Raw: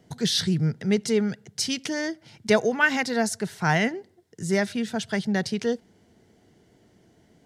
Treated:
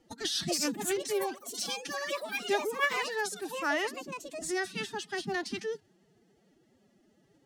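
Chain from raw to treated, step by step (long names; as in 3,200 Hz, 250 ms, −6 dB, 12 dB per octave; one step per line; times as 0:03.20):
delay with pitch and tempo change per echo 345 ms, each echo +6 semitones, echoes 3, each echo −6 dB
dynamic equaliser 410 Hz, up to −4 dB, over −36 dBFS, Q 1.1
phase-vocoder pitch shift with formants kept +11 semitones
level −7 dB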